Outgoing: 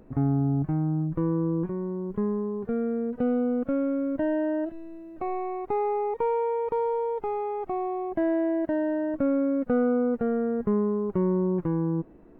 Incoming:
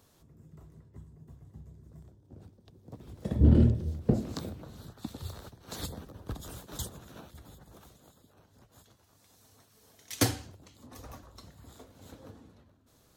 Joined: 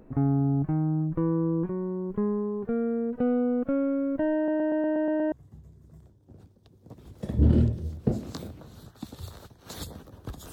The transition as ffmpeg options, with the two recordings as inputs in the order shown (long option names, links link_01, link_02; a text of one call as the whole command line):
ffmpeg -i cue0.wav -i cue1.wav -filter_complex "[0:a]apad=whole_dur=10.52,atrim=end=10.52,asplit=8[link_01][link_02][link_03][link_04][link_05][link_06][link_07][link_08];[link_01]atrim=end=4.482[link_09];[link_02]atrim=start=4.358:end=4.482[link_10];[link_03]atrim=start=4.358:end=4.482[link_11];[link_04]atrim=start=4.358:end=4.482[link_12];[link_05]atrim=start=4.358:end=4.482[link_13];[link_06]atrim=start=4.358:end=4.482[link_14];[link_07]atrim=start=4.358:end=4.482[link_15];[link_08]atrim=start=4.358:end=4.482[link_16];[1:a]atrim=start=1.338:end=6.54[link_17];[link_09][link_10]acrossfade=duration=0.004:curve1=hsin:curve2=hsin[link_18];[link_18][link_11]acrossfade=duration=0.004:curve1=hsin:curve2=hsin[link_19];[link_19][link_12]acrossfade=duration=0.004:curve1=hsin:curve2=hsin[link_20];[link_20][link_13]acrossfade=duration=0.004:curve1=hsin:curve2=hsin[link_21];[link_21][link_14]acrossfade=duration=0.004:curve1=hsin:curve2=hsin[link_22];[link_22][link_15]acrossfade=duration=0.004:curve1=hsin:curve2=hsin[link_23];[link_23][link_16]acrossfade=duration=0.004:curve1=hsin:curve2=hsin[link_24];[link_24][link_17]acrossfade=duration=0.004:curve1=hsin:curve2=hsin" out.wav